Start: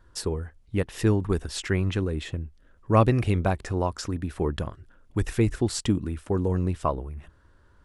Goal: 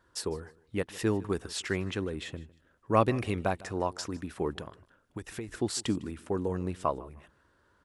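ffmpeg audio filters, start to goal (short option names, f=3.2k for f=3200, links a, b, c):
-filter_complex "[0:a]highpass=f=260:p=1,asettb=1/sr,asplit=3[a][b][c];[a]atrim=end=4.564[d];[b]atrim=start=4.56:end=5.49,asetpts=PTS-STARTPTS,afade=t=in:d=0.004:c=qsin,afade=t=out:st=0.926:d=0.004:c=qsin,acompressor=threshold=-34dB:ratio=6[e];[c]atrim=start=5.486[f];[d][e]acrossfade=d=0.004:c1=hsin:c2=qsin[g];[g][f]acrossfade=d=0.004:c1=qsin:c2=hsin,aecho=1:1:154|308:0.0891|0.0205,volume=-2.5dB"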